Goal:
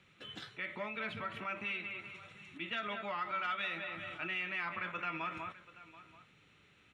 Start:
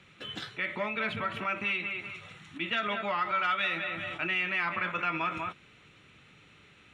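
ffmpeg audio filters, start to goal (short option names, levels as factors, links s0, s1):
-af "aecho=1:1:733:0.133,volume=0.398"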